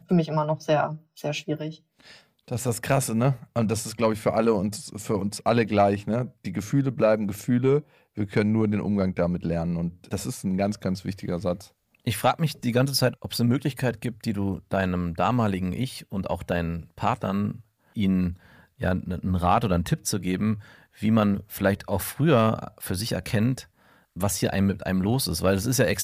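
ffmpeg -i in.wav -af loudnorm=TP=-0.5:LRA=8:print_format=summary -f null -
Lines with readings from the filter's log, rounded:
Input Integrated:    -25.6 LUFS
Input True Peak:      -9.6 dBTP
Input LRA:             3.4 LU
Input Threshold:     -35.9 LUFS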